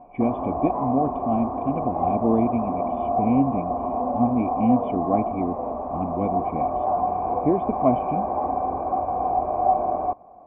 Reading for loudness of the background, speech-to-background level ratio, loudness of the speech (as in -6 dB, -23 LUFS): -26.0 LUFS, 0.5 dB, -25.5 LUFS